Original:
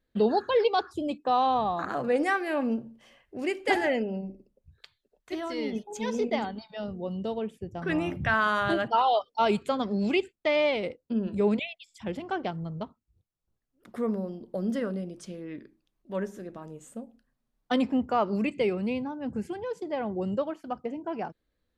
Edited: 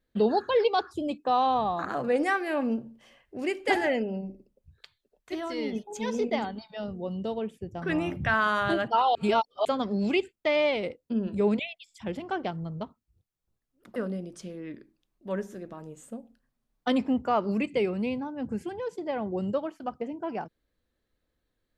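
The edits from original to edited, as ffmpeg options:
-filter_complex "[0:a]asplit=4[a][b][c][d];[a]atrim=end=9.152[e];[b]atrim=start=9.148:end=9.652,asetpts=PTS-STARTPTS,areverse[f];[c]atrim=start=9.648:end=13.962[g];[d]atrim=start=14.798[h];[e][f]acrossfade=d=0.004:c1=hsin:c2=hsin[i];[i][g]acrossfade=d=0.004:c1=hsin:c2=hsin[j];[j][h]acrossfade=d=0.004:c1=hsin:c2=hsin"

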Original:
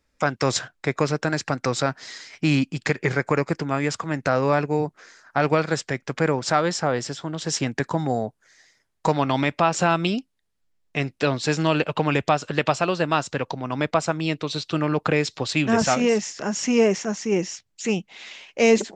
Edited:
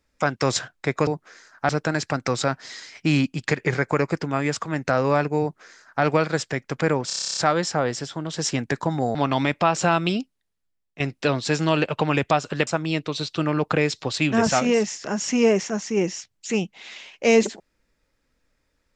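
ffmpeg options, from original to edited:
-filter_complex "[0:a]asplit=16[a][b][c][d][e][f][g][h][i][j][k][l][m][n][o][p];[a]atrim=end=1.072[q];[b]atrim=start=4.788:end=5.412[r];[c]atrim=start=1.068:end=6.482[s];[d]atrim=start=6.448:end=6.482[t];[e]atrim=start=6.448:end=6.482[u];[f]atrim=start=6.448:end=6.482[v];[g]atrim=start=6.448:end=6.482[w];[h]atrim=start=6.448:end=6.482[x];[i]atrim=start=6.448:end=6.482[y];[j]atrim=start=6.448:end=6.482[z];[k]atrim=start=6.448:end=6.482[aa];[l]atrim=start=6.448:end=6.482[ab];[m]atrim=start=6.448:end=8.232[ac];[n]atrim=start=9.128:end=10.98,asetpts=PTS-STARTPTS,afade=t=out:st=1.022:d=0.83:silence=0.199526[ad];[o]atrim=start=10.98:end=12.652,asetpts=PTS-STARTPTS,afade=t=in:d=0.004:c=hsin:silence=0.199526[ae];[p]atrim=start=14.018[af];[q][r]acrossfade=d=0.004:c1=hsin:c2=hsin[ag];[ag][s]acrossfade=d=0.004:c1=hsin:c2=hsin[ah];[ah][t]acrossfade=d=0.004:c1=hsin:c2=hsin[ai];[ai][u]acrossfade=d=0.004:c1=hsin:c2=hsin[aj];[aj][v]acrossfade=d=0.004:c1=hsin:c2=hsin[ak];[ak][w]acrossfade=d=0.004:c1=hsin:c2=hsin[al];[al][x]acrossfade=d=0.004:c1=hsin:c2=hsin[am];[am][y]acrossfade=d=0.004:c1=hsin:c2=hsin[an];[an][z]acrossfade=d=0.004:c1=hsin:c2=hsin[ao];[ao][aa]acrossfade=d=0.004:c1=hsin:c2=hsin[ap];[ap][ab]acrossfade=d=0.004:c1=hsin:c2=hsin[aq];[aq][ac]acrossfade=d=0.004:c1=hsin:c2=hsin[ar];[ad][ae]concat=n=2:v=0:a=1[as];[ar][as]acrossfade=d=0.004:c1=hsin:c2=hsin[at];[at][af]acrossfade=d=0.004:c1=hsin:c2=hsin"

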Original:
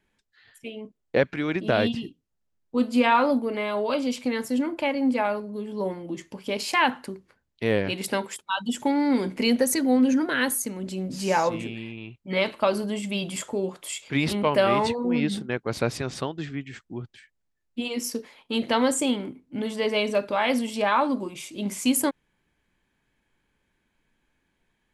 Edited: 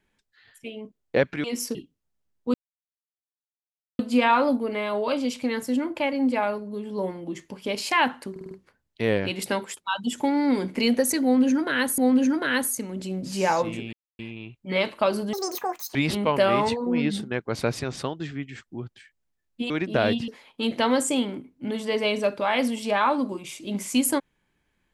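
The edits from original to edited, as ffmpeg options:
-filter_complex "[0:a]asplit=14[a][b][c][d][e][f][g][h][i][j][k][l][m][n];[a]atrim=end=1.442[o];[b]atrim=start=17.878:end=18.192[p];[c]atrim=start=2.018:end=2.81,asetpts=PTS-STARTPTS,afade=t=out:st=0.788:d=0.004:c=hsin,apad=pad_dur=1.45[q];[d]atrim=start=2.81:end=7.182,asetpts=PTS-STARTPTS,afade=t=in:d=0.004:c=hsin[r];[e]atrim=start=7.128:end=7.182[s];[f]atrim=start=7.128:end=7.182[t];[g]atrim=start=7.128:end=7.182[u];[h]atrim=start=7.128:end=10.602[v];[i]atrim=start=9.848:end=11.8,asetpts=PTS-STARTPTS,afade=t=out:st=1.948:d=0.004:c=hsin,apad=pad_dur=0.26[w];[j]atrim=start=11.8:end=12.944,asetpts=PTS-STARTPTS,afade=t=in:d=0.004:c=hsin[x];[k]atrim=start=12.94:end=14.13,asetpts=PTS-STARTPTS,asetrate=84672,aresample=44100[y];[l]atrim=start=14.126:end=17.882[z];[m]atrim=start=1.438:end=2.022[aa];[n]atrim=start=18.188[ab];[o][p]acrossfade=d=0.004:c1=hsin:c2=hsin[ac];[q][r]concat=n=2:v=0:a=1[ad];[ac][ad]acrossfade=d=0.004:c1=hsin:c2=hsin[ae];[ae][s]acrossfade=d=0.004:c1=hsin:c2=hsin[af];[af][t]acrossfade=d=0.004:c1=hsin:c2=hsin[ag];[ag][u]acrossfade=d=0.004:c1=hsin:c2=hsin[ah];[ah][v]acrossfade=d=0.004:c1=hsin:c2=hsin[ai];[w][x]concat=n=2:v=0:a=1[aj];[ai][aj]acrossfade=d=0.004:c1=hsin:c2=hsin[ak];[ak][y]acrossfade=d=0.004:c1=hsin:c2=hsin[al];[al][z]acrossfade=d=0.004:c1=hsin:c2=hsin[am];[am][aa]acrossfade=d=0.004:c1=hsin:c2=hsin[an];[an][ab]acrossfade=d=0.004:c1=hsin:c2=hsin"

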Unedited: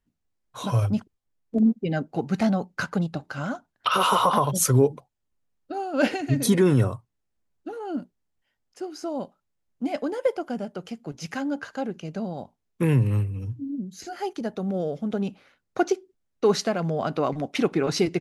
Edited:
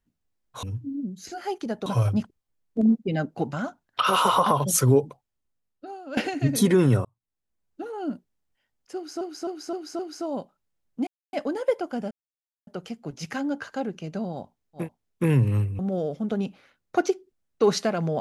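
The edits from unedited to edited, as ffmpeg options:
-filter_complex "[0:a]asplit=14[a][b][c][d][e][f][g][h][i][j][k][l][m][n];[a]atrim=end=0.632[o];[b]atrim=start=13.378:end=14.612[p];[c]atrim=start=0.628:end=2.302[q];[d]atrim=start=3.398:end=6.04,asetpts=PTS-STARTPTS,afade=t=out:st=1.532:d=1.11:silence=0.199526[r];[e]atrim=start=6.04:end=6.92,asetpts=PTS-STARTPTS,afade=t=in:d=0.004:c=hsin:silence=0.199526,afade=t=out:st=0.876:d=0.004:c=hsin[s];[f]atrim=start=6.92:end=9.082,asetpts=PTS-STARTPTS,afade=t=in:d=0.78[t];[g]atrim=start=8.818:end=9.082[u];[h]atrim=start=8.818:end=9.082[v];[i]atrim=start=8.818:end=9.082[w];[j]atrim=start=8.818:end=9.9,asetpts=PTS-STARTPTS,afade=t=out:st=1.078:d=0.004:c=hsin,apad=pad_dur=0.26[x];[k]atrim=start=9.9:end=10.68,asetpts=PTS-STARTPTS,afade=t=in:d=0.004:c=hsin,afade=t=out:st=0.776:d=0.004:c=hsin,apad=pad_dur=0.56[y];[l]atrim=start=10.68:end=12.9,asetpts=PTS-STARTPTS,afade=t=in:d=0.004:c=hsin[z];[m]atrim=start=12.32:end=13.382[aa];[n]atrim=start=14.608[ab];[o][p]acrossfade=d=0.004:c1=hsin:c2=hsin[ac];[ac][q]acrossfade=d=0.004:c1=hsin:c2=hsin[ad];[r][s][t]concat=n=3:v=0:a=1[ae];[ad][ae]acrossfade=d=0.004:c1=hsin:c2=hsin[af];[af][u]acrossfade=d=0.004:c1=hsin:c2=hsin[ag];[ag][v]acrossfade=d=0.004:c1=hsin:c2=hsin[ah];[ah][w]acrossfade=d=0.004:c1=hsin:c2=hsin[ai];[x][y][z]concat=n=3:v=0:a=1[aj];[ai][aj]acrossfade=d=0.004:c1=hsin:c2=hsin[ak];[ak][aa]acrossfade=d=0.16:c1=tri:c2=tri[al];[al][ab]acrossfade=d=0.004:c1=hsin:c2=hsin"

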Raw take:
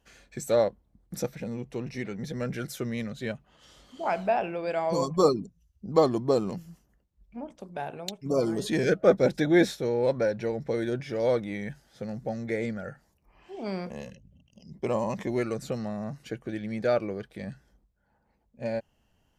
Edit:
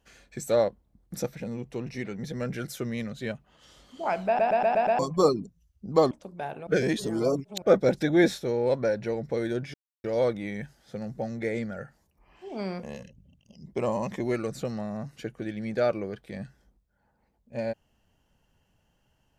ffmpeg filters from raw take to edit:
-filter_complex "[0:a]asplit=11[a][b][c][d][e][f][g][h][i][j][k];[a]atrim=end=4.392[l];[b]atrim=start=4.268:end=4.392[m];[c]atrim=start=4.268:end=4.392[n];[d]atrim=start=4.268:end=4.392[o];[e]atrim=start=4.268:end=4.392[p];[f]atrim=start=4.268:end=4.392[q];[g]atrim=start=4.988:end=6.112[r];[h]atrim=start=7.478:end=8.042[s];[i]atrim=start=8.038:end=8.992,asetpts=PTS-STARTPTS,areverse[t];[j]atrim=start=8.988:end=11.11,asetpts=PTS-STARTPTS,afade=t=out:st=2.118:d=0.004:c=hsin,apad=pad_dur=0.3[u];[k]atrim=start=11.11,asetpts=PTS-STARTPTS,afade=t=in:d=0.004:c=hsin[v];[l][m]acrossfade=d=0.004:c1=hsin:c2=hsin[w];[w][n]acrossfade=d=0.004:c1=hsin:c2=hsin[x];[x][o]acrossfade=d=0.004:c1=hsin:c2=hsin[y];[y][p]acrossfade=d=0.004:c1=hsin:c2=hsin[z];[z][q]acrossfade=d=0.004:c1=hsin:c2=hsin[aa];[aa][r]acrossfade=d=0.004:c1=hsin:c2=hsin[ab];[ab][s]acrossfade=d=0.004:c1=hsin:c2=hsin[ac];[ac][t]acrossfade=d=0.004:c1=hsin:c2=hsin[ad];[u][v]concat=n=2:v=0:a=1[ae];[ad][ae]acrossfade=d=0.004:c1=hsin:c2=hsin"

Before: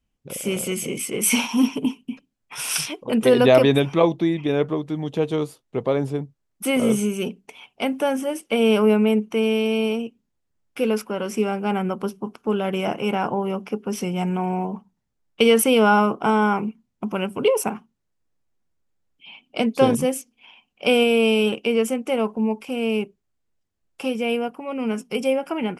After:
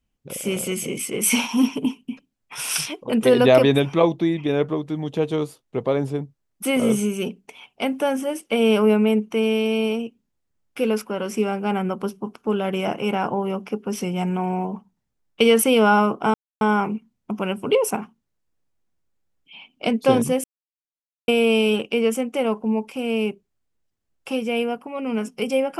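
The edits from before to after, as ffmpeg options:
-filter_complex "[0:a]asplit=4[a][b][c][d];[a]atrim=end=16.34,asetpts=PTS-STARTPTS,afade=t=out:st=16.336:d=0.004:c=hsin,apad=pad_dur=0.27[e];[b]atrim=start=16.34:end=20.17,asetpts=PTS-STARTPTS,afade=t=in:d=0.004:c=hsin,afade=t=out:st=3.826:d=0.004:c=hsin[f];[c]atrim=start=20.17:end=21.01,asetpts=PTS-STARTPTS,volume=0[g];[d]atrim=start=21.01,asetpts=PTS-STARTPTS,afade=t=in:d=0.004:c=hsin[h];[e][f][g][h]concat=n=4:v=0:a=1"

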